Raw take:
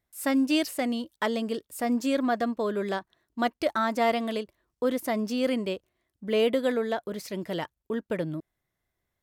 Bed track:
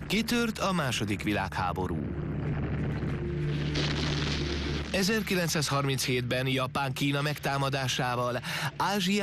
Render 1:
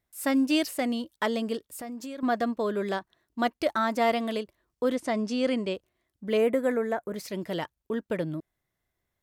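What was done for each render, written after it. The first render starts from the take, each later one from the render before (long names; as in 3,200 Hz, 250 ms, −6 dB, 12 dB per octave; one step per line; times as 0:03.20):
0:01.57–0:02.23: downward compressor 5 to 1, threshold −36 dBFS
0:04.95–0:05.75: low-pass filter 8,800 Hz 24 dB per octave
0:06.37–0:07.16: flat-topped bell 3,900 Hz −15 dB 1.1 octaves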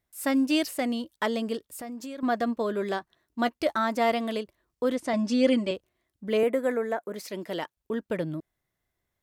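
0:02.46–0:03.75: double-tracking delay 13 ms −13.5 dB
0:05.13–0:05.71: comb filter 3.5 ms, depth 95%
0:06.43–0:07.77: high-pass filter 230 Hz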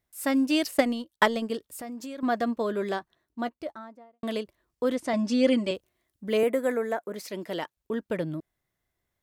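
0:00.64–0:01.50: transient designer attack +9 dB, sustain −9 dB
0:02.83–0:04.23: fade out and dull
0:05.64–0:07.00: high-shelf EQ 5,800 Hz +6 dB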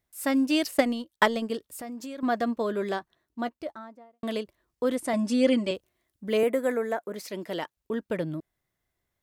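0:04.93–0:05.44: high shelf with overshoot 7,400 Hz +7.5 dB, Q 1.5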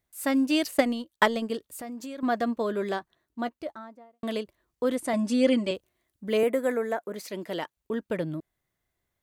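notch filter 5,300 Hz, Q 19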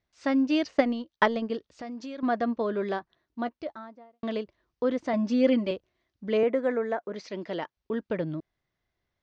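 Butterworth low-pass 5,900 Hz 48 dB per octave
dynamic equaliser 4,300 Hz, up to −6 dB, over −46 dBFS, Q 0.76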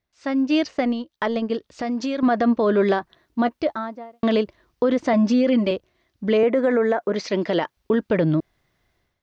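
automatic gain control gain up to 14 dB
brickwall limiter −11.5 dBFS, peak gain reduction 10.5 dB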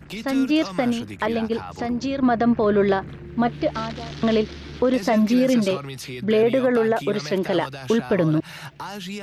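mix in bed track −5.5 dB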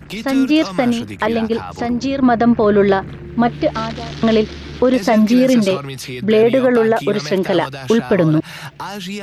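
level +6 dB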